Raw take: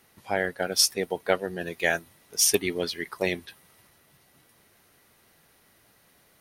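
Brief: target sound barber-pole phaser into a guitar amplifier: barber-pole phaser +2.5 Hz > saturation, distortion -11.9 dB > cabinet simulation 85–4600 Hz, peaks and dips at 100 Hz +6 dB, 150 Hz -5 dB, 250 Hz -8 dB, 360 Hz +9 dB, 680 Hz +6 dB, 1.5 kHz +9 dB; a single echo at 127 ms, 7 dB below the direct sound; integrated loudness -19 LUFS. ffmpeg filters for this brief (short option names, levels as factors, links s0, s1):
-filter_complex "[0:a]aecho=1:1:127:0.447,asplit=2[s0][s1];[s1]afreqshift=2.5[s2];[s0][s2]amix=inputs=2:normalize=1,asoftclip=threshold=0.0841,highpass=85,equalizer=f=100:t=q:w=4:g=6,equalizer=f=150:t=q:w=4:g=-5,equalizer=f=250:t=q:w=4:g=-8,equalizer=f=360:t=q:w=4:g=9,equalizer=f=680:t=q:w=4:g=6,equalizer=f=1500:t=q:w=4:g=9,lowpass=f=4600:w=0.5412,lowpass=f=4600:w=1.3066,volume=3.55"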